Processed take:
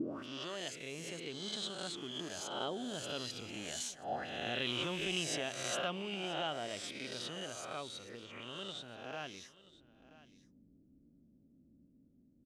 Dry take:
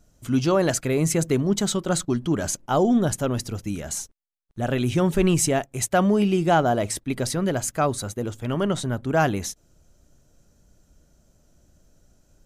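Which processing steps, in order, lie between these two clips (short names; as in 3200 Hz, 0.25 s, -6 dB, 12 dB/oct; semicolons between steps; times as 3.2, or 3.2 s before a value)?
spectral swells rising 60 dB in 1.06 s; Doppler pass-by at 4.48, 10 m/s, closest 7.8 m; tilt shelf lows +9.5 dB, about 680 Hz; compressor 2:1, threshold -24 dBFS, peak gain reduction 8.5 dB; auto-wah 240–3200 Hz, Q 4.3, up, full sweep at -30 dBFS; echo 0.981 s -19 dB; gain +15.5 dB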